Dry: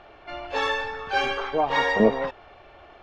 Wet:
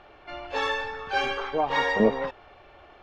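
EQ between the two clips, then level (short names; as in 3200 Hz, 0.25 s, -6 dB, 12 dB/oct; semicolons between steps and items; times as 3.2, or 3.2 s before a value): notch 670 Hz, Q 18; -2.0 dB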